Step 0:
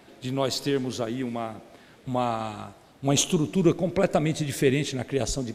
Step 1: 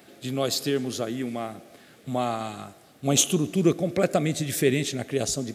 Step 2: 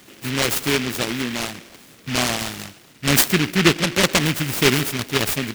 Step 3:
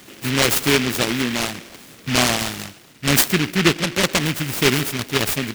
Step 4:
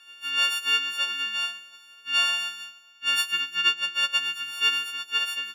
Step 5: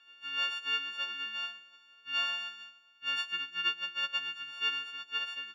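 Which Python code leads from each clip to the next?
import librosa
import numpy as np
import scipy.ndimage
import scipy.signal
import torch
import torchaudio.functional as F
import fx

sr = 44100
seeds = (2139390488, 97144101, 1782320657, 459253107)

y1 = scipy.signal.sosfilt(scipy.signal.butter(2, 100.0, 'highpass', fs=sr, output='sos'), x)
y1 = fx.high_shelf(y1, sr, hz=9100.0, db=11.5)
y1 = fx.notch(y1, sr, hz=950.0, q=5.2)
y2 = fx.noise_mod_delay(y1, sr, seeds[0], noise_hz=2200.0, depth_ms=0.34)
y2 = F.gain(torch.from_numpy(y2), 5.0).numpy()
y3 = fx.rider(y2, sr, range_db=5, speed_s=2.0)
y4 = fx.freq_snap(y3, sr, grid_st=4)
y4 = fx.double_bandpass(y4, sr, hz=2100.0, octaves=0.9)
y4 = fx.echo_feedback(y4, sr, ms=178, feedback_pct=50, wet_db=-22.0)
y4 = F.gain(torch.from_numpy(y4), -4.5).numpy()
y5 = fx.air_absorb(y4, sr, metres=150.0)
y5 = F.gain(torch.from_numpy(y5), -6.5).numpy()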